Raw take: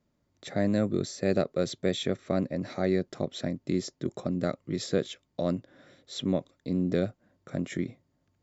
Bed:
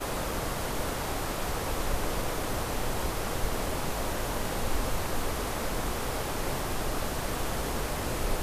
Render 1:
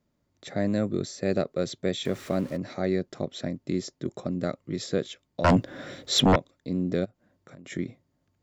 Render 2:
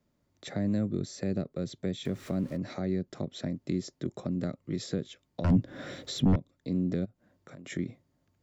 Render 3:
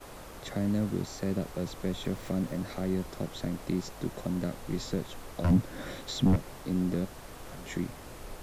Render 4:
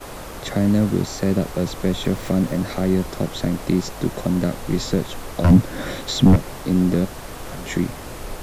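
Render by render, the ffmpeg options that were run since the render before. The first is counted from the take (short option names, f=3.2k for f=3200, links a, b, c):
-filter_complex "[0:a]asettb=1/sr,asplit=3[a][b][c];[a]atrim=end=2.054[d];[b]atrim=start=2.05:end=2.57,asetpts=PTS-STARTPTS,afade=t=in:d=0.004:c=qsin,afade=t=out:st=0.516:d=0.004:c=qsin,aeval=exprs='val(0)+0.5*0.00944*sgn(val(0))':c=same[e];[c]atrim=start=2.566[f];[d][e]acrossfade=d=0.004:c1=hsin:c2=qsin[g];[g][f]acrossfade=d=0.004:c1=qsin:c2=hsin,asettb=1/sr,asplit=3[h][i][j];[h]atrim=end=5.444[k];[i]atrim=start=5.44:end=6.36,asetpts=PTS-STARTPTS,afade=t=in:d=0.004:c=qsin,afade=t=out:st=0.916:d=0.004:c=qsin,aeval=exprs='0.211*sin(PI/2*3.98*val(0)/0.211)':c=same[l];[j]atrim=start=6.356[m];[k][l]acrossfade=d=0.004:c1=hsin:c2=qsin[n];[n][m]acrossfade=d=0.004:c1=qsin:c2=hsin,asplit=3[o][p][q];[o]afade=t=out:st=7.04:d=0.02[r];[p]acompressor=threshold=-45dB:ratio=6:attack=3.2:release=140:knee=1:detection=peak,afade=t=in:st=7.04:d=0.02,afade=t=out:st=7.65:d=0.02[s];[q]afade=t=in:st=7.65:d=0.02[t];[r][s][t]amix=inputs=3:normalize=0"
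-filter_complex "[0:a]acrossover=split=280[a][b];[b]acompressor=threshold=-37dB:ratio=8[c];[a][c]amix=inputs=2:normalize=0"
-filter_complex "[1:a]volume=-14dB[a];[0:a][a]amix=inputs=2:normalize=0"
-af "volume=11.5dB"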